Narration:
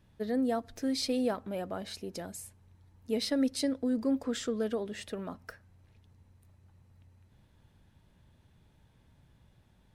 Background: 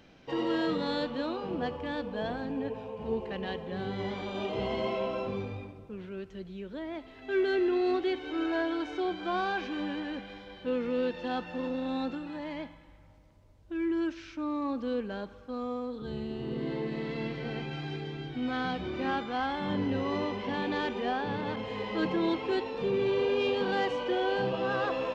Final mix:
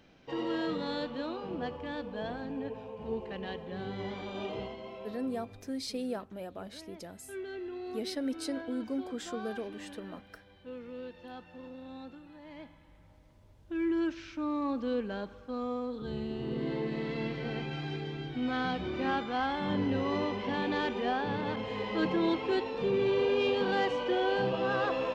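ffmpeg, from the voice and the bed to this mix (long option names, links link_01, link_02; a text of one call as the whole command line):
ffmpeg -i stem1.wav -i stem2.wav -filter_complex "[0:a]adelay=4850,volume=-5.5dB[link_01];[1:a]volume=9.5dB,afade=type=out:start_time=4.51:duration=0.25:silence=0.334965,afade=type=in:start_time=12.42:duration=0.95:silence=0.223872[link_02];[link_01][link_02]amix=inputs=2:normalize=0" out.wav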